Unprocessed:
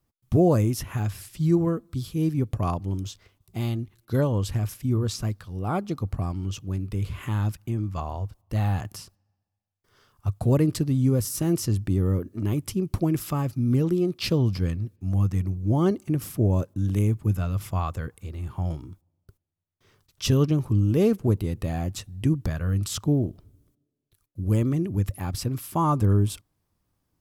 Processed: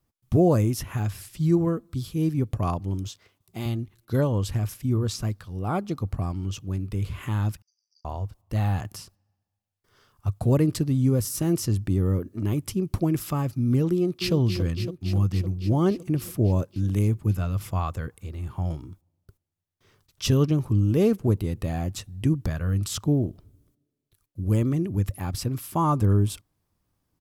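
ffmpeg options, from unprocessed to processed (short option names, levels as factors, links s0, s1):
-filter_complex "[0:a]asettb=1/sr,asplit=3[s0][s1][s2];[s0]atrim=end=3.084[s3];[s1]atrim=start=3.08:end=3.66,asetpts=PTS-STARTPTS,afade=t=in:d=0.004:c=qsin,afade=t=out:st=0.576:d=0.004:c=qsin,highpass=f=200:p=1[s4];[s2]atrim=start=3.656[s5];[s3][s4]acrossfade=d=0.004:c1=hsin:c2=qsin[s6];[s6][s5]acrossfade=d=0.004:c1=qsin:c2=hsin,asettb=1/sr,asplit=3[s7][s8][s9];[s7]atrim=end=7.624[s10];[s8]atrim=start=7.62:end=8.05,asetpts=PTS-STARTPTS,afade=t=in:d=0.004:c=qsin,afade=t=out:st=0.426:d=0.004:c=qsin,asuperpass=centerf=5300:order=12:qfactor=3.8[s11];[s9]atrim=start=8.046[s12];[s10][s11]acrossfade=d=0.004:c1=hsin:c2=qsin[s13];[s13][s12]acrossfade=d=0.004:c1=qsin:c2=hsin,asplit=2[s14][s15];[s15]afade=t=in:st=13.93:d=0.01,afade=t=out:st=14.34:d=0.01,aecho=0:1:280|560|840|1120|1400|1680|1960|2240|2520|2800|3080|3360:0.398107|0.29858|0.223935|0.167951|0.125964|0.0944727|0.0708545|0.0531409|0.0398557|0.0298918|0.0224188|0.0168141[s16];[s14][s16]amix=inputs=2:normalize=0"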